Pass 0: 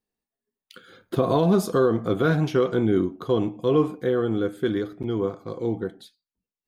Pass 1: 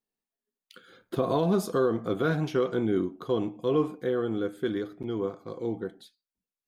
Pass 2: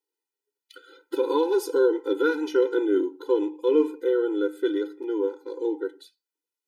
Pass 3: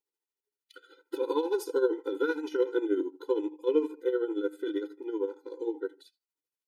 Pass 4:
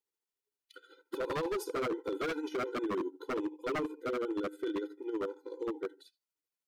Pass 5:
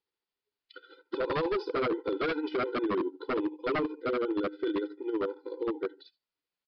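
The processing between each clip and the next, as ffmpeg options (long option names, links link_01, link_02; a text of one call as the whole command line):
ffmpeg -i in.wav -af "equalizer=frequency=72:width=0.89:gain=-6.5,volume=-4.5dB" out.wav
ffmpeg -i in.wav -af "afftfilt=real='re*eq(mod(floor(b*sr/1024/260),2),1)':imag='im*eq(mod(floor(b*sr/1024/260),2),1)':win_size=1024:overlap=0.75,volume=5.5dB" out.wav
ffmpeg -i in.wav -af "tremolo=f=13:d=0.68,volume=-3dB" out.wav
ffmpeg -i in.wav -af "aeval=exprs='0.0501*(abs(mod(val(0)/0.0501+3,4)-2)-1)':channel_layout=same,volume=-2dB" out.wav
ffmpeg -i in.wav -af "aresample=11025,aresample=44100,volume=4.5dB" out.wav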